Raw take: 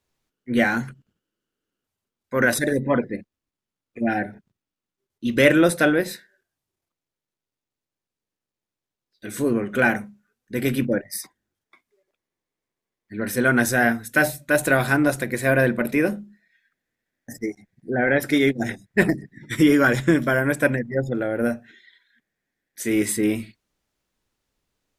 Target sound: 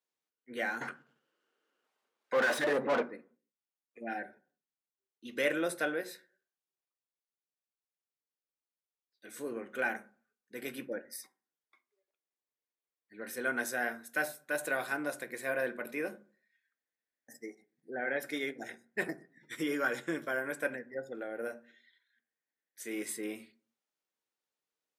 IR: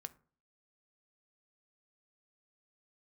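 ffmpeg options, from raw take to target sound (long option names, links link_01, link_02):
-filter_complex "[0:a]asettb=1/sr,asplit=3[link_01][link_02][link_03];[link_01]atrim=end=0.814[link_04];[link_02]atrim=start=0.81:end=3.03,asetpts=PTS-STARTPTS,afade=type=in:duration=0.004:curve=qsin,afade=type=out:start_time=2.216:duration=0.004:curve=qsin,asplit=2[link_05][link_06];[link_06]highpass=frequency=720:poles=1,volume=31dB,asoftclip=type=tanh:threshold=-5.5dB[link_07];[link_05][link_07]amix=inputs=2:normalize=0,lowpass=frequency=1300:poles=1,volume=-6dB[link_08];[link_03]atrim=start=3.026[link_09];[link_04][link_08]acrossfade=duration=0.004:curve1=hsin:curve2=qsin[link_10];[link_10][link_09]acrossfade=duration=0.004:curve1=qsin:curve2=hsin,highpass=370[link_11];[1:a]atrim=start_sample=2205[link_12];[link_11][link_12]afir=irnorm=-1:irlink=0,volume=-8.5dB"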